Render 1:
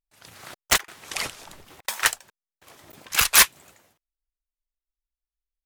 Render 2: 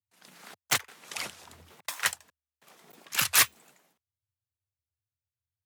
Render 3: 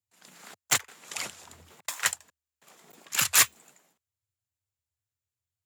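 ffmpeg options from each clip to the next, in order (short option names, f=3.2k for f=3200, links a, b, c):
-af "afreqshift=76,volume=-6.5dB"
-af "equalizer=f=7.2k:w=6.7:g=9.5"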